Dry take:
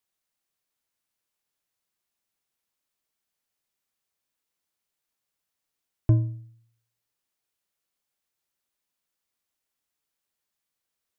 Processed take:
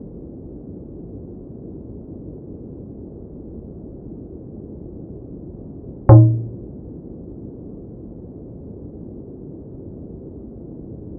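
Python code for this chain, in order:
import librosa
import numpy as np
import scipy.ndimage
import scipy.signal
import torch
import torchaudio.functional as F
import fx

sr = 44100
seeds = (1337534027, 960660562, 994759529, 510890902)

y = fx.wiener(x, sr, points=25)
y = scipy.signal.sosfilt(scipy.signal.butter(4, 1300.0, 'lowpass', fs=sr, output='sos'), y)
y = fx.peak_eq(y, sr, hz=470.0, db=11.5, octaves=1.1)
y = fx.fold_sine(y, sr, drive_db=7, ceiling_db=-7.5)
y = fx.dmg_noise_band(y, sr, seeds[0], low_hz=37.0, high_hz=390.0, level_db=-41.0)
y = F.gain(torch.from_numpy(y), 6.0).numpy()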